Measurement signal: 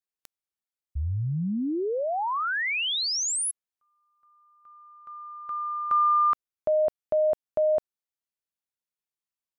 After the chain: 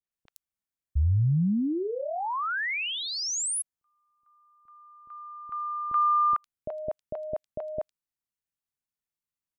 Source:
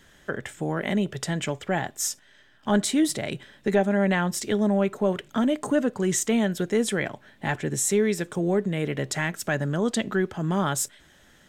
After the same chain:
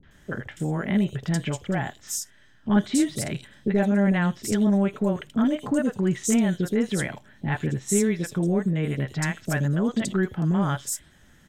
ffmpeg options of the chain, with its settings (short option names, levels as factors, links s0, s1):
-filter_complex "[0:a]bass=f=250:g=7,treble=f=4000:g=0,acrossover=split=550|3800[s0][s1][s2];[s1]adelay=30[s3];[s2]adelay=110[s4];[s0][s3][s4]amix=inputs=3:normalize=0,volume=0.841"